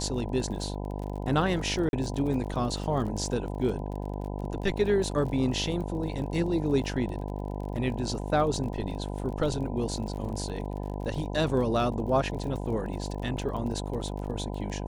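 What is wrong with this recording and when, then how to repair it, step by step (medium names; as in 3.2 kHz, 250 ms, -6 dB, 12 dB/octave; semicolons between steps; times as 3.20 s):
buzz 50 Hz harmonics 20 -34 dBFS
crackle 33 per s -36 dBFS
1.89–1.93 s: dropout 41 ms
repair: de-click; de-hum 50 Hz, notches 20; interpolate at 1.89 s, 41 ms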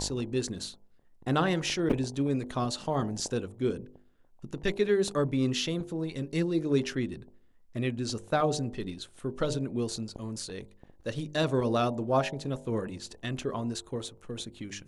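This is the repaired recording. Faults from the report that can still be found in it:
nothing left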